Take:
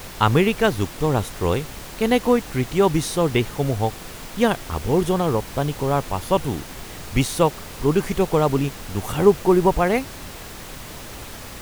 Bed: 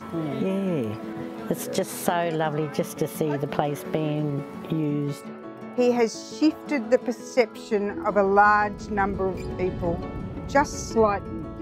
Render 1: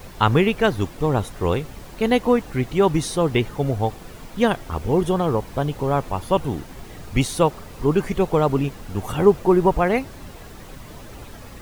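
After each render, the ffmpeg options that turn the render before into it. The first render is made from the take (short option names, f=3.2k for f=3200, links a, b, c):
-af "afftdn=nr=9:nf=-37"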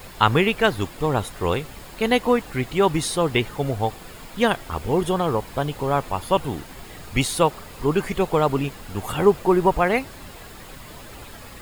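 -af "tiltshelf=f=700:g=-3.5,bandreject=f=5.9k:w=8.5"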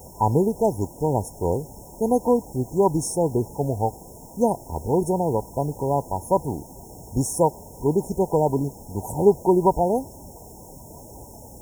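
-af "highpass=42,afftfilt=real='re*(1-between(b*sr/4096,1000,5300))':imag='im*(1-between(b*sr/4096,1000,5300))':win_size=4096:overlap=0.75"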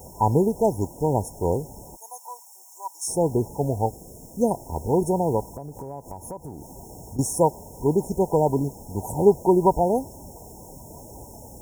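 -filter_complex "[0:a]asplit=3[a][b][c];[a]afade=t=out:st=1.95:d=0.02[d];[b]highpass=f=1.2k:w=0.5412,highpass=f=1.2k:w=1.3066,afade=t=in:st=1.95:d=0.02,afade=t=out:st=3.07:d=0.02[e];[c]afade=t=in:st=3.07:d=0.02[f];[d][e][f]amix=inputs=3:normalize=0,asettb=1/sr,asplit=3[g][h][i];[g]atrim=end=3.864[j];[h]atrim=start=3.86:end=4.51,asetpts=PTS-STARTPTS,afade=t=in:d=0.004:c=qsin,afade=t=out:st=0.646:d=0.004:c=qsin,equalizer=f=930:t=o:w=0.66:g=-10.5[k];[i]atrim=start=4.506[l];[j][k]acrossfade=d=0.004:c1=hsin:c2=qsin[m];[m][l]acrossfade=d=0.004:c1=qsin:c2=hsin,asettb=1/sr,asplit=3[n][o][p];[n]atrim=end=5.474[q];[o]atrim=start=5.47:end=7.19,asetpts=PTS-STARTPTS,afade=t=in:d=0.004:c=qsin,afade=t=out:st=1.716:d=0.004:c=qsin,acompressor=threshold=-33dB:ratio=5:attack=3.2:release=140:knee=1:detection=peak[r];[p]atrim=start=7.186[s];[q][r]acrossfade=d=0.004:c1=hsin:c2=qsin[t];[t][s]acrossfade=d=0.004:c1=qsin:c2=hsin"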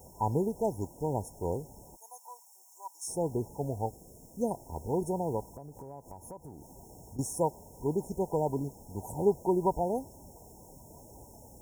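-af "volume=-9.5dB"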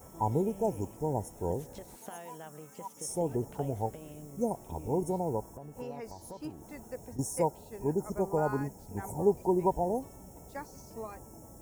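-filter_complex "[1:a]volume=-22dB[a];[0:a][a]amix=inputs=2:normalize=0"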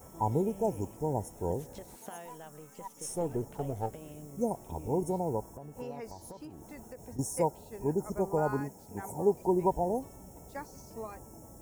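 -filter_complex "[0:a]asettb=1/sr,asplit=3[a][b][c];[a]atrim=end=2.264[d];[b]atrim=start=2.26:end=3.93,asetpts=PTS-STARTPTS,afade=t=in:d=0.004:c=qsin,afade=t=out:st=1.666:d=0.004:c=qsin,aeval=exprs='if(lt(val(0),0),0.708*val(0),val(0))':c=same[e];[c]atrim=start=3.926[f];[d][e]acrossfade=d=0.004:c1=hsin:c2=qsin[g];[g][f]acrossfade=d=0.004:c1=qsin:c2=hsin,asettb=1/sr,asplit=3[h][i][j];[h]atrim=end=6.314[k];[i]atrim=start=6.31:end=7.09,asetpts=PTS-STARTPTS,afade=t=in:d=0.004:c=qsin,afade=t=out:st=0.776:d=0.004:c=qsin,acompressor=threshold=-41dB:ratio=6:attack=3.2:release=140:knee=1:detection=peak[l];[j]atrim=start=7.086[m];[k][l]acrossfade=d=0.004:c1=hsin:c2=qsin[n];[n][m]acrossfade=d=0.004:c1=qsin:c2=hsin,asettb=1/sr,asplit=3[o][p][q];[o]atrim=end=8.604[r];[p]atrim=start=8.6:end=9.42,asetpts=PTS-STARTPTS,afade=t=in:d=0.004:c=qsin,afade=t=out:st=0.816:d=0.004:c=qsin,highpass=f=160:p=1[s];[q]atrim=start=9.416[t];[r][s]acrossfade=d=0.004:c1=hsin:c2=qsin[u];[u][t]acrossfade=d=0.004:c1=qsin:c2=hsin"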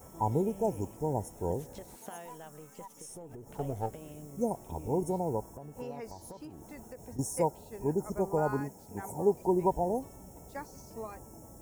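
-filter_complex "[0:a]asettb=1/sr,asplit=3[a][b][c];[a]atrim=end=2.824[d];[b]atrim=start=2.82:end=3.53,asetpts=PTS-STARTPTS,afade=t=in:d=0.004:c=qsin,afade=t=out:st=0.706:d=0.004:c=qsin,acompressor=threshold=-42dB:ratio=16:attack=3.2:release=140:knee=1:detection=peak[e];[c]atrim=start=3.526[f];[d][e]acrossfade=d=0.004:c1=hsin:c2=qsin[g];[g][f]acrossfade=d=0.004:c1=qsin:c2=hsin"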